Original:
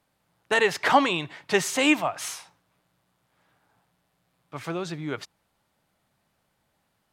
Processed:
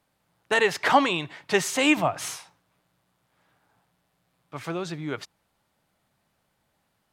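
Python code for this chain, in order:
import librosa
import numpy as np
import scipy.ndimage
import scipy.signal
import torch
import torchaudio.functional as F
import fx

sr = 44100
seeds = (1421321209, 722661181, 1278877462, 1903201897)

y = fx.low_shelf(x, sr, hz=430.0, db=10.5, at=(1.97, 2.37))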